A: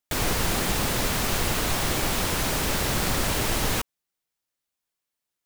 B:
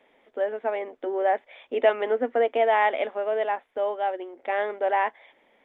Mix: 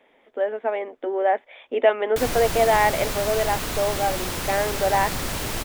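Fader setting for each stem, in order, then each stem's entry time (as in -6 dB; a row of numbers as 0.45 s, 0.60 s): -3.0 dB, +2.5 dB; 2.05 s, 0.00 s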